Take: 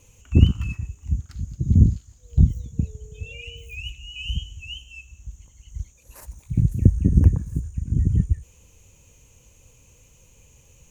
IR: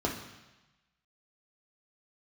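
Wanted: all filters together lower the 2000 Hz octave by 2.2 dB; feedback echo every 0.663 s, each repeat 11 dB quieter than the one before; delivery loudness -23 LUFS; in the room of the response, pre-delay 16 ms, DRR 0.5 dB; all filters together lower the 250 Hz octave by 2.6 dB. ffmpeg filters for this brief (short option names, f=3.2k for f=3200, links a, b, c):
-filter_complex "[0:a]equalizer=f=250:t=o:g=-4,equalizer=f=2k:t=o:g=-3.5,aecho=1:1:663|1326|1989:0.282|0.0789|0.0221,asplit=2[a][b];[1:a]atrim=start_sample=2205,adelay=16[c];[b][c]afir=irnorm=-1:irlink=0,volume=-9dB[d];[a][d]amix=inputs=2:normalize=0,volume=-6dB"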